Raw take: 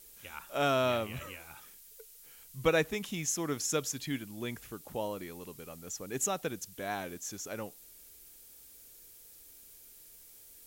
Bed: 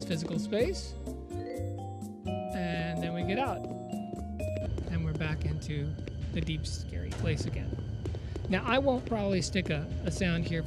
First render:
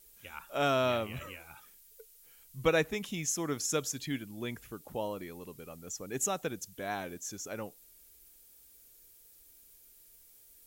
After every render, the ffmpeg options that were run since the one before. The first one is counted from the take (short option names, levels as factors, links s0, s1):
-af "afftdn=nr=6:nf=-55"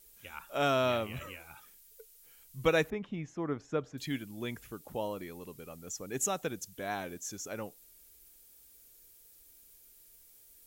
-filter_complex "[0:a]asettb=1/sr,asplit=3[s0][s1][s2];[s0]atrim=end=2.904[s3];[s1]atrim=start=2.9:end=3.98,asetpts=PTS-STARTPTS,afade=t=in:d=0.004:c=qsin,afade=t=out:st=1.076:d=0.004:c=qsin,lowpass=1500[s4];[s2]atrim=start=3.976[s5];[s3][s4]acrossfade=d=0.004:c1=hsin:c2=qsin[s6];[s6][s5]acrossfade=d=0.004:c1=qsin:c2=hsin"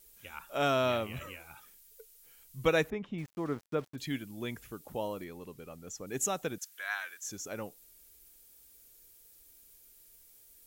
-filter_complex "[0:a]asettb=1/sr,asplit=3[s0][s1][s2];[s0]atrim=end=3.184[s3];[s1]atrim=start=3.18:end=3.96,asetpts=PTS-STARTPTS,afade=t=in:d=0.004:c=qsin,afade=t=out:st=0.776:d=0.004:c=qsin,aeval=exprs='val(0)*gte(abs(val(0)),0.00376)':c=same[s4];[s2]atrim=start=3.956[s5];[s3][s4]acrossfade=d=0.004:c1=hsin:c2=qsin[s6];[s6][s5]acrossfade=d=0.004:c1=qsin:c2=hsin,asettb=1/sr,asplit=3[s7][s8][s9];[s7]atrim=end=5.244[s10];[s8]atrim=start=5.24:end=6.07,asetpts=PTS-STARTPTS,afade=t=in:d=0.004:c=qsin,afade=t=out:st=0.826:d=0.004:c=qsin,highshelf=f=5800:g=-6.5[s11];[s9]atrim=start=6.066[s12];[s10][s11]acrossfade=d=0.004:c1=hsin:c2=qsin[s13];[s13][s12]acrossfade=d=0.004:c1=qsin:c2=hsin,asettb=1/sr,asplit=3[s14][s15][s16];[s14]atrim=end=6.584[s17];[s15]atrim=start=6.58:end=7.24,asetpts=PTS-STARTPTS,afade=t=in:d=0.004:c=qsin,afade=t=out:st=0.656:d=0.004:c=qsin,highpass=f=1500:t=q:w=2.3[s18];[s16]atrim=start=7.236[s19];[s17][s18]acrossfade=d=0.004:c1=hsin:c2=qsin[s20];[s20][s19]acrossfade=d=0.004:c1=qsin:c2=hsin"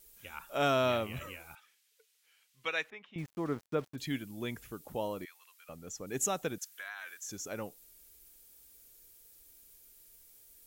-filter_complex "[0:a]asettb=1/sr,asplit=3[s0][s1][s2];[s0]atrim=end=1.554[s3];[s1]atrim=start=1.55:end=3.16,asetpts=PTS-STARTPTS,afade=t=in:d=0.004:c=qsin,afade=t=out:st=1.606:d=0.004:c=qsin,bandpass=f=2500:t=q:w=1[s4];[s2]atrim=start=3.156[s5];[s3][s4]acrossfade=d=0.004:c1=hsin:c2=qsin[s6];[s6][s5]acrossfade=d=0.004:c1=qsin:c2=hsin,asettb=1/sr,asplit=3[s7][s8][s9];[s7]atrim=end=5.254[s10];[s8]atrim=start=5.25:end=5.69,asetpts=PTS-STARTPTS,afade=t=in:d=0.004:c=qsin,afade=t=out:st=0.436:d=0.004:c=qsin,highpass=f=1300:w=0.5412,highpass=f=1300:w=1.3066[s11];[s9]atrim=start=5.686[s12];[s10][s11]acrossfade=d=0.004:c1=hsin:c2=qsin[s13];[s13][s12]acrossfade=d=0.004:c1=qsin:c2=hsin,asettb=1/sr,asplit=3[s14][s15][s16];[s14]atrim=end=6.744[s17];[s15]atrim=start=6.74:end=7.29,asetpts=PTS-STARTPTS,afade=t=in:d=0.004:c=qsin,afade=t=out:st=0.546:d=0.004:c=qsin,acompressor=threshold=0.0126:ratio=10:attack=3.2:release=140:knee=1:detection=peak[s18];[s16]atrim=start=7.286[s19];[s17][s18]acrossfade=d=0.004:c1=hsin:c2=qsin[s20];[s20][s19]acrossfade=d=0.004:c1=qsin:c2=hsin"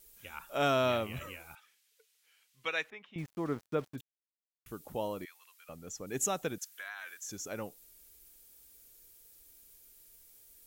-filter_complex "[0:a]asplit=3[s0][s1][s2];[s0]atrim=end=4.01,asetpts=PTS-STARTPTS,afade=t=out:st=4.006:d=0.004:c=hsin[s3];[s1]atrim=start=4.01:end=4.66,asetpts=PTS-STARTPTS,volume=0[s4];[s2]atrim=start=4.66,asetpts=PTS-STARTPTS,afade=t=in:d=0.004:c=hsin[s5];[s3][s4][s5]concat=n=3:v=0:a=1"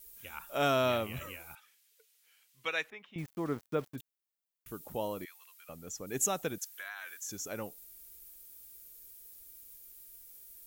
-af "highshelf=f=12000:g=10"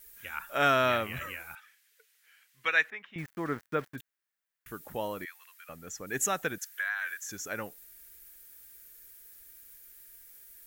-af "equalizer=f=1700:w=1.6:g=12.5"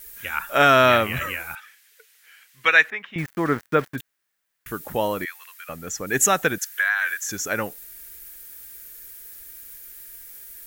-af "volume=3.55,alimiter=limit=0.708:level=0:latency=1"